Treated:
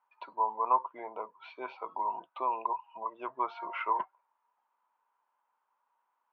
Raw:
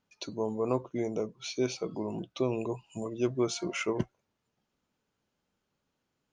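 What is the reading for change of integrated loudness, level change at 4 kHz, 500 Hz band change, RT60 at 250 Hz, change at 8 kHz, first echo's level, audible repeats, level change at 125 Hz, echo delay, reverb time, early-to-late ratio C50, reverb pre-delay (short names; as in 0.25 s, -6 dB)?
-1.0 dB, -15.0 dB, -10.5 dB, none, under -35 dB, none, none, under -30 dB, none, none, none, none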